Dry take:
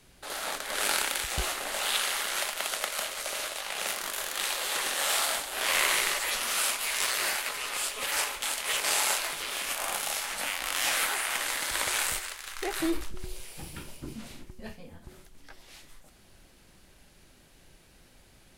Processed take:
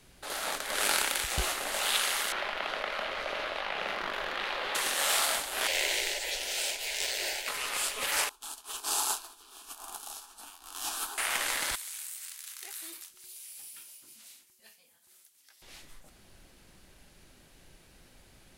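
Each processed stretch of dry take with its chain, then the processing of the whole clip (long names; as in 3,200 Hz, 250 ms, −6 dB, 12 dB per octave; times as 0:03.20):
0:02.32–0:04.75: high-frequency loss of the air 330 metres + envelope flattener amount 70%
0:05.67–0:07.48: parametric band 11,000 Hz −11.5 dB 0.59 octaves + phaser with its sweep stopped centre 490 Hz, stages 4
0:08.29–0:11.18: phaser with its sweep stopped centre 550 Hz, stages 6 + expander for the loud parts 2.5 to 1, over −42 dBFS
0:11.75–0:15.62: first difference + downward compressor, threshold −37 dBFS
whole clip: no processing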